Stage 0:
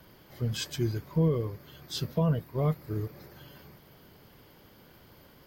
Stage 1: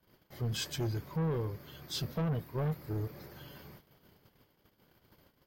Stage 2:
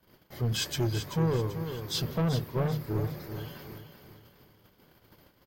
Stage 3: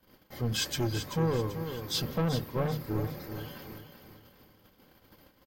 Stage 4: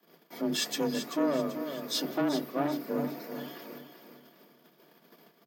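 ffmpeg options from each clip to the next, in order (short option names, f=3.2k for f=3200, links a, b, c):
-af "agate=range=-21dB:threshold=-53dB:ratio=16:detection=peak,asoftclip=type=tanh:threshold=-29dB"
-af "bandreject=f=50:t=h:w=6,bandreject=f=100:t=h:w=6,bandreject=f=150:t=h:w=6,aecho=1:1:386|772|1158|1544:0.355|0.128|0.046|0.0166,volume=5.5dB"
-af "aecho=1:1:3.8:0.34"
-af "afreqshift=140"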